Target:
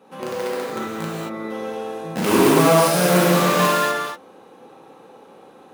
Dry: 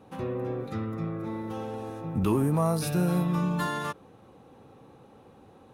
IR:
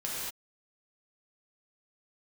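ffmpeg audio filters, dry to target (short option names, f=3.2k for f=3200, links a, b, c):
-filter_complex "[0:a]asplit=2[a][b];[b]acrusher=bits=3:mix=0:aa=0.000001,volume=-3.5dB[c];[a][c]amix=inputs=2:normalize=0,highpass=310[d];[1:a]atrim=start_sample=2205[e];[d][e]afir=irnorm=-1:irlink=0,volume=5dB"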